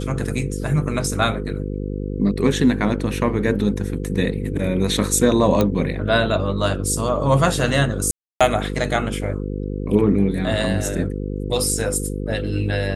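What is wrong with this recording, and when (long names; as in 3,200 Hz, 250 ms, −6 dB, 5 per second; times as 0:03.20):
mains buzz 50 Hz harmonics 10 −26 dBFS
0:05.61: click −6 dBFS
0:08.11–0:08.41: drop-out 296 ms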